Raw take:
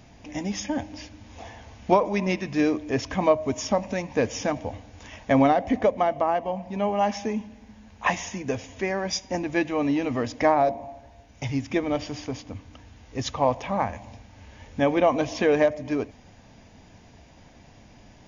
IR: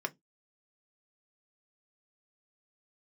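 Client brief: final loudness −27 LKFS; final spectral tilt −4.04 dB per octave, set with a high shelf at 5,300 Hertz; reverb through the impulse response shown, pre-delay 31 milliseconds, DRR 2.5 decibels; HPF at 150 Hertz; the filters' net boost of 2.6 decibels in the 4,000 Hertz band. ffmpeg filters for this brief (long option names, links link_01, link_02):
-filter_complex "[0:a]highpass=150,equalizer=frequency=4000:width_type=o:gain=7.5,highshelf=frequency=5300:gain=-7.5,asplit=2[link_01][link_02];[1:a]atrim=start_sample=2205,adelay=31[link_03];[link_02][link_03]afir=irnorm=-1:irlink=0,volume=-6dB[link_04];[link_01][link_04]amix=inputs=2:normalize=0,volume=-3.5dB"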